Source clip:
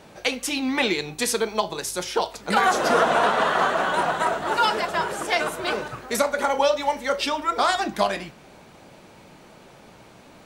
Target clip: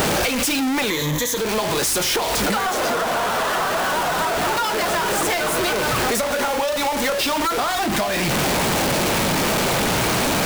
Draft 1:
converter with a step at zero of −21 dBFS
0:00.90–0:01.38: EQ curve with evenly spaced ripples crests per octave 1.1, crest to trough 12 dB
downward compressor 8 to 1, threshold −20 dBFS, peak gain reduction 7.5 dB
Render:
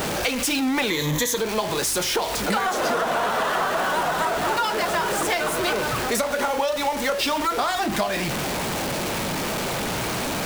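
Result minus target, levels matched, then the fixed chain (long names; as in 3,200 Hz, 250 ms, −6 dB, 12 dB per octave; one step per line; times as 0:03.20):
converter with a step at zero: distortion −6 dB
converter with a step at zero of −11 dBFS
0:00.90–0:01.38: EQ curve with evenly spaced ripples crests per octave 1.1, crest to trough 12 dB
downward compressor 8 to 1, threshold −20 dBFS, peak gain reduction 10.5 dB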